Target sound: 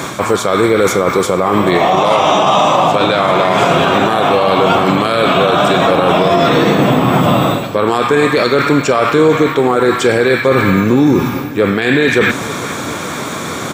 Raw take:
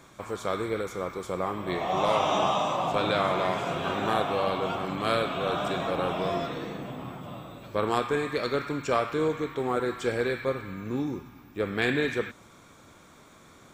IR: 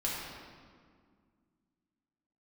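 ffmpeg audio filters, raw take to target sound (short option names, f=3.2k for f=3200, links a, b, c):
-af "highpass=110,areverse,acompressor=threshold=-37dB:ratio=6,areverse,aecho=1:1:440|880|1320|1760:0.1|0.056|0.0314|0.0176,alimiter=level_in=33dB:limit=-1dB:release=50:level=0:latency=1,volume=-1dB"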